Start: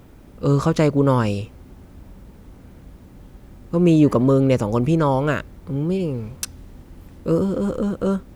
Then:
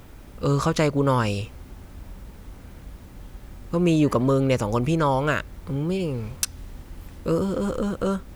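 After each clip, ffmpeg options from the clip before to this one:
ffmpeg -i in.wav -filter_complex "[0:a]equalizer=frequency=240:width=0.36:gain=-7.5,asplit=2[link_01][link_02];[link_02]acompressor=threshold=-30dB:ratio=6,volume=-1.5dB[link_03];[link_01][link_03]amix=inputs=2:normalize=0" out.wav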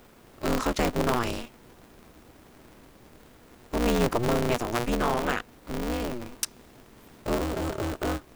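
ffmpeg -i in.wav -af "highpass=frequency=110:width=0.5412,highpass=frequency=110:width=1.3066,aeval=exprs='val(0)*sgn(sin(2*PI*120*n/s))':channel_layout=same,volume=-4.5dB" out.wav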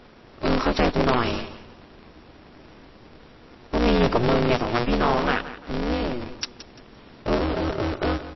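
ffmpeg -i in.wav -af "aecho=1:1:172|344|516:0.2|0.0619|0.0192,volume=5dB" -ar 16000 -c:a libmp3lame -b:a 24k out.mp3

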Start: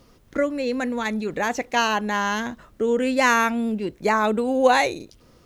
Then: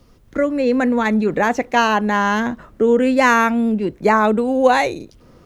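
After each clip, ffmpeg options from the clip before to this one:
ffmpeg -i in.wav -filter_complex "[0:a]lowshelf=frequency=150:gain=8,acrossover=split=140|2200[link_01][link_02][link_03];[link_02]dynaudnorm=framelen=320:gausssize=3:maxgain=11.5dB[link_04];[link_01][link_04][link_03]amix=inputs=3:normalize=0,volume=-1dB" out.wav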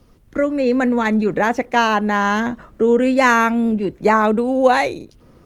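ffmpeg -i in.wav -ar 48000 -c:a libopus -b:a 32k out.opus

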